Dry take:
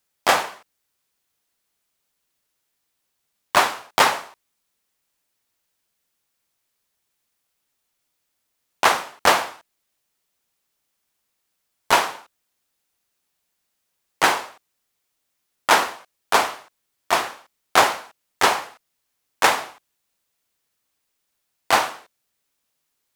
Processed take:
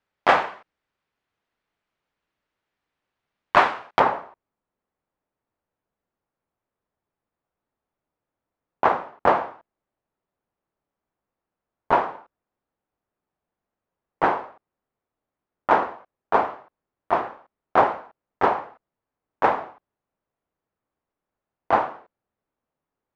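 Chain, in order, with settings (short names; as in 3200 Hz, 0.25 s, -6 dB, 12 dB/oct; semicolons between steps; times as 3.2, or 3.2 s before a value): LPF 2200 Hz 12 dB/oct, from 4 s 1000 Hz; gain +1.5 dB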